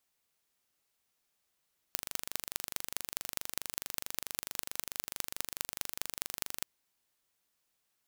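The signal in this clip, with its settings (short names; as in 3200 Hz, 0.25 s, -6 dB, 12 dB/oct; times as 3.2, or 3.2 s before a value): pulse train 24.6/s, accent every 5, -4.5 dBFS 4.68 s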